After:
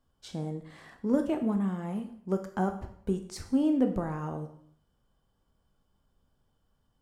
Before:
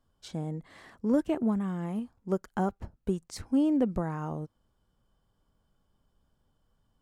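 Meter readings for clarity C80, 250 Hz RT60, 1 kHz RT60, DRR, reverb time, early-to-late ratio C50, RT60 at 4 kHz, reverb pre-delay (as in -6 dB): 13.0 dB, 0.60 s, 0.65 s, 5.5 dB, 0.65 s, 10.0 dB, 0.60 s, 6 ms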